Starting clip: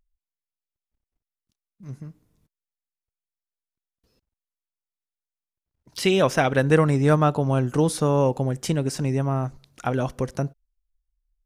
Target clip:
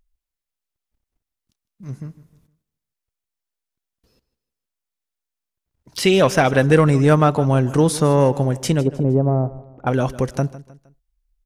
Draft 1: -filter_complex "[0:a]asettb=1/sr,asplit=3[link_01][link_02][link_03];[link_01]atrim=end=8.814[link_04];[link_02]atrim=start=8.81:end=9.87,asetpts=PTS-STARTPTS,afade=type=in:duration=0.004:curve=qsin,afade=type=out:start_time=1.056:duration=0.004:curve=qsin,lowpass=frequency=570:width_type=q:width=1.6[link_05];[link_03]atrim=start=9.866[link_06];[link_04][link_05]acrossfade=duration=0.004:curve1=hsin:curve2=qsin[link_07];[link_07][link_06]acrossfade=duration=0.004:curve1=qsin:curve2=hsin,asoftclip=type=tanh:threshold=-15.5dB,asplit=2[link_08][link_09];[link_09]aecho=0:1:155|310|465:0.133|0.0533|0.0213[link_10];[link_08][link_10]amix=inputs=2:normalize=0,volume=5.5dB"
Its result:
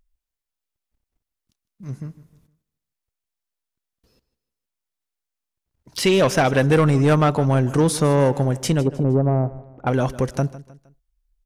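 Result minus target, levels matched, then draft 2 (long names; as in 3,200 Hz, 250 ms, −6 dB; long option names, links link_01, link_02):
soft clipping: distortion +9 dB
-filter_complex "[0:a]asettb=1/sr,asplit=3[link_01][link_02][link_03];[link_01]atrim=end=8.814[link_04];[link_02]atrim=start=8.81:end=9.87,asetpts=PTS-STARTPTS,afade=type=in:duration=0.004:curve=qsin,afade=type=out:start_time=1.056:duration=0.004:curve=qsin,lowpass=frequency=570:width_type=q:width=1.6[link_05];[link_03]atrim=start=9.866[link_06];[link_04][link_05]acrossfade=duration=0.004:curve1=hsin:curve2=qsin[link_07];[link_07][link_06]acrossfade=duration=0.004:curve1=qsin:curve2=hsin,asoftclip=type=tanh:threshold=-8.5dB,asplit=2[link_08][link_09];[link_09]aecho=0:1:155|310|465:0.133|0.0533|0.0213[link_10];[link_08][link_10]amix=inputs=2:normalize=0,volume=5.5dB"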